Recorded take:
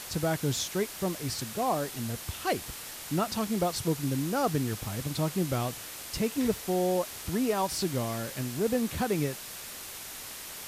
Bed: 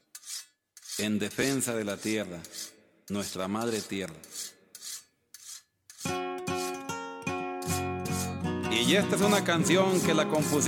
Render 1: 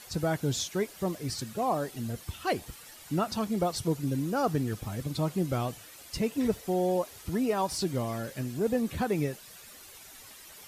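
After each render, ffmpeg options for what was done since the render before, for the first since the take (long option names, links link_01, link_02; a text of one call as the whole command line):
ffmpeg -i in.wav -af "afftdn=noise_reduction=11:noise_floor=-42" out.wav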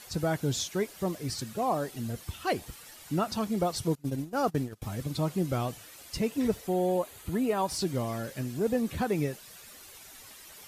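ffmpeg -i in.wav -filter_complex "[0:a]asettb=1/sr,asplit=3[link_01][link_02][link_03];[link_01]atrim=end=3.954[link_04];[link_02]atrim=start=3.95:end=4.82,asetpts=PTS-STARTPTS,afade=type=in:duration=0.004:curve=qsin,afade=type=out:start_time=0.866:duration=0.004:curve=qsin,agate=range=-23dB:threshold=-30dB:ratio=16:release=100:detection=peak[link_05];[link_03]atrim=start=4.816[link_06];[link_04][link_05]acrossfade=duration=0.004:curve1=hsin:curve2=qsin[link_07];[link_07][link_06]acrossfade=duration=0.004:curve1=qsin:curve2=hsin,asettb=1/sr,asplit=3[link_08][link_09][link_10];[link_08]atrim=end=6.674[link_11];[link_09]atrim=start=6.67:end=7.68,asetpts=PTS-STARTPTS,afade=type=in:duration=0.004:curve=qsin,afade=type=out:start_time=1.006:duration=0.004:curve=qsin,equalizer=frequency=5400:width_type=o:width=0.27:gain=-11.5[link_12];[link_10]atrim=start=7.676[link_13];[link_11][link_12]acrossfade=duration=0.004:curve1=hsin:curve2=qsin[link_14];[link_14][link_13]acrossfade=duration=0.004:curve1=qsin:curve2=hsin" out.wav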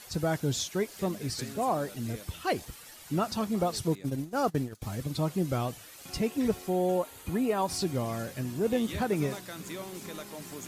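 ffmpeg -i in.wav -i bed.wav -filter_complex "[1:a]volume=-16.5dB[link_01];[0:a][link_01]amix=inputs=2:normalize=0" out.wav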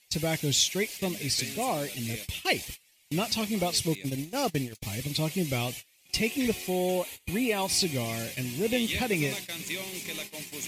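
ffmpeg -i in.wav -af "agate=range=-23dB:threshold=-42dB:ratio=16:detection=peak,highshelf=frequency=1800:width_type=q:width=3:gain=8" out.wav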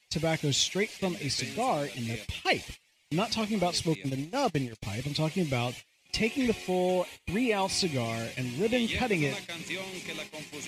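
ffmpeg -i in.wav -filter_complex "[0:a]acrossover=split=380|1200|2600[link_01][link_02][link_03][link_04];[link_02]crystalizer=i=8:c=0[link_05];[link_04]adynamicsmooth=sensitivity=0.5:basefreq=7000[link_06];[link_01][link_05][link_03][link_06]amix=inputs=4:normalize=0" out.wav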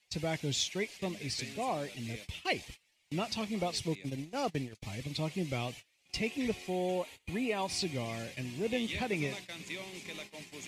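ffmpeg -i in.wav -af "volume=-6dB" out.wav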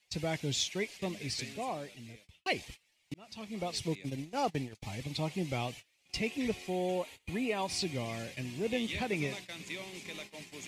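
ffmpeg -i in.wav -filter_complex "[0:a]asettb=1/sr,asplit=3[link_01][link_02][link_03];[link_01]atrim=end=4.374[link_04];[link_02]atrim=start=4.37:end=5.67,asetpts=PTS-STARTPTS,afade=type=in:duration=0.004:curve=qsin,afade=type=out:start_time=1.296:duration=0.004:curve=qsin,equalizer=frequency=830:width=4.9:gain=6.5[link_05];[link_03]atrim=start=5.666[link_06];[link_04][link_05]acrossfade=duration=0.004:curve1=hsin:curve2=qsin[link_07];[link_07][link_06]acrossfade=duration=0.004:curve1=qsin:curve2=hsin,asplit=3[link_08][link_09][link_10];[link_08]atrim=end=2.46,asetpts=PTS-STARTPTS,afade=type=out:start_time=1.37:duration=1.09[link_11];[link_09]atrim=start=2.46:end=3.14,asetpts=PTS-STARTPTS,afade=type=in:duration=0.004:curve=hsin,afade=type=out:start_time=0.676:duration=0.004:curve=hsin[link_12];[link_10]atrim=start=3.14,asetpts=PTS-STARTPTS,afade=type=in:duration=0.71[link_13];[link_11][link_12][link_13]concat=n=3:v=0:a=1" out.wav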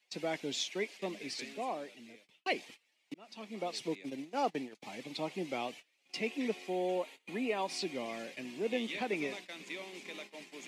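ffmpeg -i in.wav -af "highpass=frequency=230:width=0.5412,highpass=frequency=230:width=1.3066,highshelf=frequency=4800:gain=-8.5" out.wav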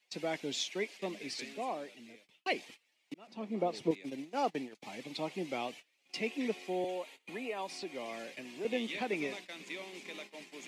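ffmpeg -i in.wav -filter_complex "[0:a]asettb=1/sr,asplit=3[link_01][link_02][link_03];[link_01]atrim=end=3.274[link_04];[link_02]atrim=start=3.27:end=3.91,asetpts=PTS-STARTPTS,afade=type=in:duration=0.004:curve=qsin,afade=type=out:start_time=0.636:duration=0.004:curve=qsin,tiltshelf=frequency=1400:gain=8[link_05];[link_03]atrim=start=3.906[link_06];[link_04][link_05]acrossfade=duration=0.004:curve1=hsin:curve2=qsin[link_07];[link_07][link_06]acrossfade=duration=0.004:curve1=qsin:curve2=hsin,asettb=1/sr,asplit=3[link_08][link_09][link_10];[link_08]atrim=end=6.844[link_11];[link_09]atrim=start=6.84:end=8.65,asetpts=PTS-STARTPTS,afade=type=in:duration=0.004:curve=qsin,afade=type=out:start_time=1.806:duration=0.004:curve=qsin,acrossover=split=370|1900|7500[link_12][link_13][link_14][link_15];[link_12]acompressor=threshold=-52dB:ratio=3[link_16];[link_13]acompressor=threshold=-38dB:ratio=3[link_17];[link_14]acompressor=threshold=-48dB:ratio=3[link_18];[link_15]acompressor=threshold=-59dB:ratio=3[link_19];[link_16][link_17][link_18][link_19]amix=inputs=4:normalize=0[link_20];[link_10]atrim=start=8.646[link_21];[link_11][link_20]acrossfade=duration=0.004:curve1=hsin:curve2=qsin[link_22];[link_22][link_21]acrossfade=duration=0.004:curve1=qsin:curve2=hsin" out.wav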